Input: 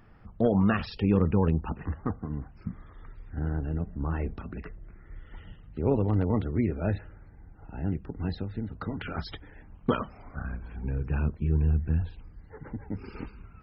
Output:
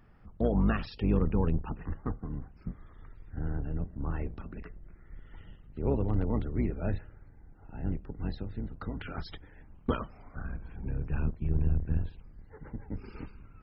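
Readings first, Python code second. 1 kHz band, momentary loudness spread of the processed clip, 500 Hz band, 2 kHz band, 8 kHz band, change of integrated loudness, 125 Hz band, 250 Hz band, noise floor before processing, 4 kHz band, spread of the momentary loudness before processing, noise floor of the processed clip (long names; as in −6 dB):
−5.0 dB, 19 LU, −5.0 dB, −5.0 dB, can't be measured, −4.0 dB, −4.0 dB, −4.5 dB, −52 dBFS, −5.0 dB, 19 LU, −55 dBFS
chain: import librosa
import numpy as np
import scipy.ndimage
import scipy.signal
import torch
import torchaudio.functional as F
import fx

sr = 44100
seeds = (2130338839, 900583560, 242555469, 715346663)

y = fx.octave_divider(x, sr, octaves=2, level_db=0.0)
y = F.gain(torch.from_numpy(y), -5.0).numpy()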